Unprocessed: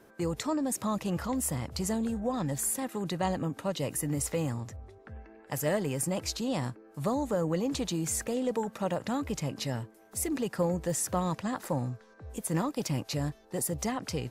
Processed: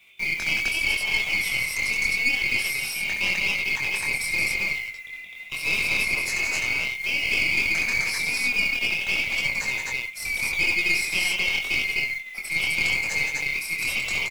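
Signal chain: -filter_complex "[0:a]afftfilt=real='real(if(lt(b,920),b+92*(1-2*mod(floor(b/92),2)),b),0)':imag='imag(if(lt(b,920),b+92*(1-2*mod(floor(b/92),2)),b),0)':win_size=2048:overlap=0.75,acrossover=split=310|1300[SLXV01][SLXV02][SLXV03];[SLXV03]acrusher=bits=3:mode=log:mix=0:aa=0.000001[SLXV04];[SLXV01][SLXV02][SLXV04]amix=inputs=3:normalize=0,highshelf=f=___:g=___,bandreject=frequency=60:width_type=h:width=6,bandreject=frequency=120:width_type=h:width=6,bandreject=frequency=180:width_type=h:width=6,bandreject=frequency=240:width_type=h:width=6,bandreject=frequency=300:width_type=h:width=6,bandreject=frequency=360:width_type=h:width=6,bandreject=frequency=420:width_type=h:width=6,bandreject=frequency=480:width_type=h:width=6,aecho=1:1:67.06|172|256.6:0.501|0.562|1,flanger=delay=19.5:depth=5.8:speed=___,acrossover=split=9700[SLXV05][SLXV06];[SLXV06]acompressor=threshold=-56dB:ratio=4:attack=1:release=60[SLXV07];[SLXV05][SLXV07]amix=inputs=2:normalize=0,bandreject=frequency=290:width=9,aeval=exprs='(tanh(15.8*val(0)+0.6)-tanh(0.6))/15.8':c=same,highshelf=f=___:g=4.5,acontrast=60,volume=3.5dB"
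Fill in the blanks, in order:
4700, -7, 0.83, 9600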